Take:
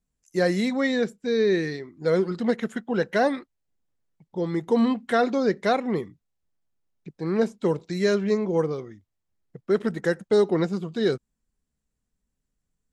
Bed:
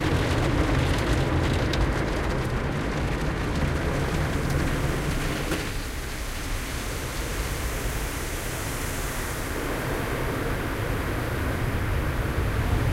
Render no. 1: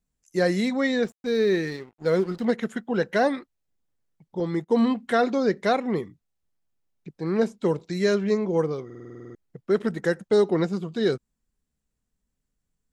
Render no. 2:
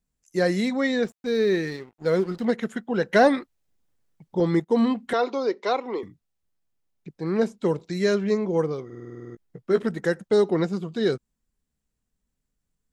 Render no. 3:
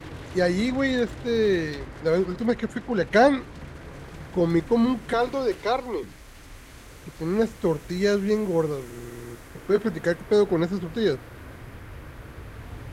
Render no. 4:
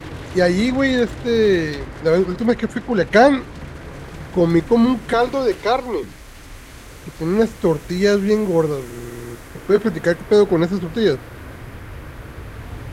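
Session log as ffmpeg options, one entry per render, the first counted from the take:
-filter_complex "[0:a]asettb=1/sr,asplit=3[s0][s1][s2];[s0]atrim=end=1.044[s3];[s1]atrim=start=1.04:end=2.45,asetpts=PTS-STARTPTS,afade=t=in:d=0.004:c=qsin,afade=t=out:st=1.406:d=0.004:c=qsin,aeval=exprs='sgn(val(0))*max(abs(val(0))-0.00501,0)':c=same[s4];[s2]atrim=start=2.446[s5];[s3][s4]acrossfade=d=0.004:c1=hsin:c2=qsin[s6];[s6][s5]acrossfade=d=0.004:c1=qsin:c2=hsin,asettb=1/sr,asplit=3[s7][s8][s9];[s7]atrim=end=4.404[s10];[s8]atrim=start=4.4:end=4.89,asetpts=PTS-STARTPTS,afade=t=in:d=0.004:c=qsin,afade=t=out:st=0.486:d=0.004:c=qsin,agate=range=0.0562:threshold=0.0158:ratio=16:release=100:detection=peak[s11];[s9]atrim=start=4.886[s12];[s10][s11]acrossfade=d=0.004:c1=hsin:c2=qsin[s13];[s13][s12]acrossfade=d=0.004:c1=qsin:c2=hsin,asplit=11[s14][s15][s16][s17][s18][s19][s20][s21][s22][s23][s24];[s14]atrim=end=8.902[s25];[s15]atrim=start=8.848:end=8.902[s26];[s16]atrim=start=8.848:end=8.902[s27];[s17]atrim=start=8.848:end=8.902[s28];[s18]atrim=start=8.848:end=8.902[s29];[s19]atrim=start=8.848:end=8.902[s30];[s20]atrim=start=8.848:end=8.902[s31];[s21]atrim=start=8.848:end=8.902[s32];[s22]atrim=start=8.848:end=8.902[s33];[s23]atrim=start=8.848:end=8.902[s34];[s24]atrim=start=9.348[s35];[s25][s26]acrossfade=d=0.004:c1=hsin:c2=hsin[s36];[s36][s27]acrossfade=d=0.004:c1=hsin:c2=hsin[s37];[s37][s28]acrossfade=d=0.004:c1=hsin:c2=hsin[s38];[s38][s29]acrossfade=d=0.004:c1=hsin:c2=hsin[s39];[s39][s30]acrossfade=d=0.004:c1=hsin:c2=hsin[s40];[s40][s31]acrossfade=d=0.004:c1=hsin:c2=hsin[s41];[s41][s32]acrossfade=d=0.004:c1=hsin:c2=hsin[s42];[s42][s33]acrossfade=d=0.004:c1=hsin:c2=hsin[s43];[s43][s34]acrossfade=d=0.004:c1=hsin:c2=hsin[s44];[s44][s35]acrossfade=d=0.004:c1=hsin:c2=hsin"
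-filter_complex "[0:a]asettb=1/sr,asplit=3[s0][s1][s2];[s0]atrim=end=3.134[s3];[s1]atrim=start=3.13:end=4.6,asetpts=PTS-STARTPTS,afade=t=in:d=0.004:c=qsin,afade=t=out:st=1.466:d=0.004:c=qsin,acontrast=31[s4];[s2]atrim=start=4.596[s5];[s3][s4]acrossfade=d=0.004:c1=hsin:c2=qsin[s6];[s6][s5]acrossfade=d=0.004:c1=qsin:c2=hsin,asettb=1/sr,asplit=3[s7][s8][s9];[s7]atrim=end=5.134[s10];[s8]atrim=start=5.13:end=6.03,asetpts=PTS-STARTPTS,afade=t=in:d=0.004:c=qsin,afade=t=out:st=0.896:d=0.004:c=qsin,highpass=f=320:w=0.5412,highpass=f=320:w=1.3066,equalizer=f=650:t=q:w=4:g=-5,equalizer=f=970:t=q:w=4:g=6,equalizer=f=1700:t=q:w=4:g=-10,lowpass=f=6000:w=0.5412,lowpass=f=6000:w=1.3066[s11];[s9]atrim=start=6.026[s12];[s10][s11]acrossfade=d=0.004:c1=hsin:c2=qsin[s13];[s13][s12]acrossfade=d=0.004:c1=qsin:c2=hsin,asettb=1/sr,asplit=3[s14][s15][s16];[s14]atrim=end=8.914[s17];[s15]atrim=start=8.91:end=9.83,asetpts=PTS-STARTPTS,afade=t=in:d=0.004:c=qsin,afade=t=out:st=0.916:d=0.004:c=qsin,asplit=2[s18][s19];[s19]adelay=17,volume=0.447[s20];[s18][s20]amix=inputs=2:normalize=0,atrim=end_sample=40572[s21];[s16]atrim=start=9.826[s22];[s17][s21]acrossfade=d=0.004:c1=hsin:c2=qsin[s23];[s23][s22]acrossfade=d=0.004:c1=qsin:c2=hsin"
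-filter_complex "[1:a]volume=0.178[s0];[0:a][s0]amix=inputs=2:normalize=0"
-af "volume=2.11,alimiter=limit=0.891:level=0:latency=1"

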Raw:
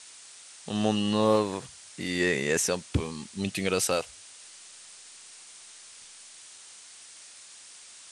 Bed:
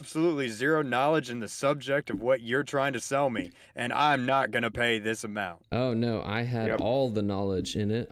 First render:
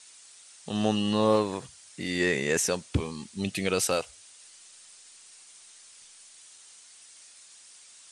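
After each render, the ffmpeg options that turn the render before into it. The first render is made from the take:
-af "afftdn=nr=6:nf=-50"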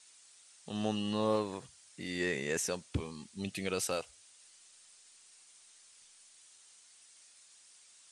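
-af "volume=0.398"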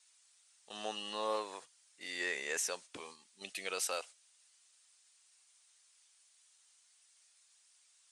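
-af "highpass=650,agate=range=0.398:threshold=0.00282:ratio=16:detection=peak"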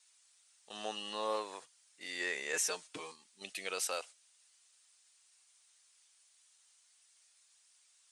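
-filter_complex "[0:a]asettb=1/sr,asplit=3[s0][s1][s2];[s0]atrim=end=2.534[s3];[s1]atrim=start=2.53:end=3.12,asetpts=PTS-STARTPTS,afade=t=in:d=0.004:c=qsin,afade=t=out:st=0.586:d=0.004:c=qsin,aecho=1:1:6.5:0.87,atrim=end_sample=26019[s4];[s2]atrim=start=3.116[s5];[s3][s4]acrossfade=d=0.004:c1=hsin:c2=qsin[s6];[s6][s5]acrossfade=d=0.004:c1=qsin:c2=hsin"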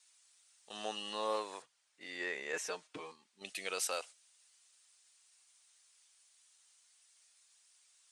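-filter_complex "[0:a]asettb=1/sr,asplit=3[s0][s1][s2];[s0]atrim=end=1.624[s3];[s1]atrim=start=1.62:end=3.45,asetpts=PTS-STARTPTS,afade=t=in:d=0.004:c=qsin,afade=t=out:st=1.826:d=0.004:c=qsin,lowpass=f=2200:p=1[s4];[s2]atrim=start=3.446[s5];[s3][s4]acrossfade=d=0.004:c1=hsin:c2=qsin[s6];[s6][s5]acrossfade=d=0.004:c1=qsin:c2=hsin"

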